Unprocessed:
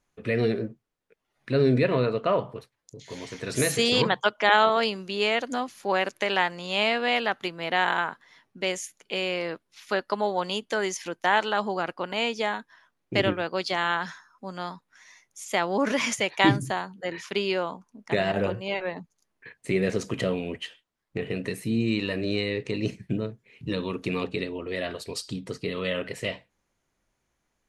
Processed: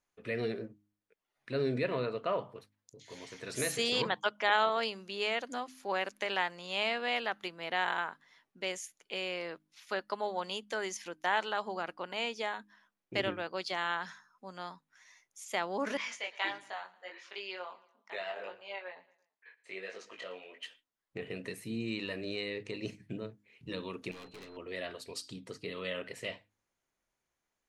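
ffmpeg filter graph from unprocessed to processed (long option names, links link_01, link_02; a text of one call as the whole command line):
ffmpeg -i in.wav -filter_complex "[0:a]asettb=1/sr,asplit=3[link_01][link_02][link_03];[link_01]atrim=end=15.974[link_04];[link_02]atrim=start=15.97:end=20.63,asetpts=PTS-STARTPTS,afade=type=in:duration=0.004:curve=qsin,afade=type=out:start_time=4.656:duration=0.004:curve=qsin,flanger=delay=19.5:depth=2.8:speed=1.5,highpass=620,lowpass=5000,aecho=1:1:114|228|342:0.0944|0.0425|0.0191,atrim=end_sample=205506[link_05];[link_03]atrim=start=20.626[link_06];[link_04][link_05]acrossfade=duration=0.004:curve1=hsin:curve2=qsin[link_07];[link_07][link_06]acrossfade=duration=0.004:curve1=qsin:curve2=hsin,asettb=1/sr,asplit=3[link_08][link_09][link_10];[link_08]atrim=end=24.114[link_11];[link_09]atrim=start=24.11:end=24.57,asetpts=PTS-STARTPTS,afade=type=in:duration=0.004:curve=qsin,afade=type=out:start_time=0.456:duration=0.004:curve=qsin,aeval=exprs='(tanh(70.8*val(0)+0.5)-tanh(0.5))/70.8':channel_layout=same,aeval=exprs='val(0)+0.00178*sin(2*PI*4100*n/s)':channel_layout=same[link_12];[link_10]atrim=start=24.566[link_13];[link_11][link_12]acrossfade=duration=0.004:curve1=hsin:curve2=qsin[link_14];[link_14][link_13]acrossfade=duration=0.004:curve1=qsin:curve2=hsin,lowshelf=frequency=290:gain=-7,bandreject=frequency=51.64:width_type=h:width=4,bandreject=frequency=103.28:width_type=h:width=4,bandreject=frequency=154.92:width_type=h:width=4,bandreject=frequency=206.56:width_type=h:width=4,bandreject=frequency=258.2:width_type=h:width=4,bandreject=frequency=309.84:width_type=h:width=4,volume=-7.5dB" out.wav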